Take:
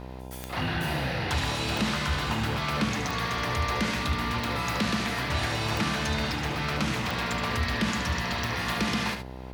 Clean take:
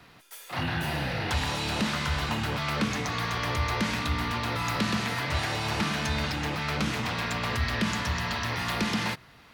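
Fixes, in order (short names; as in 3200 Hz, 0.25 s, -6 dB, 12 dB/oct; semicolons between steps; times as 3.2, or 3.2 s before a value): de-click; de-hum 63.9 Hz, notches 16; inverse comb 73 ms -8.5 dB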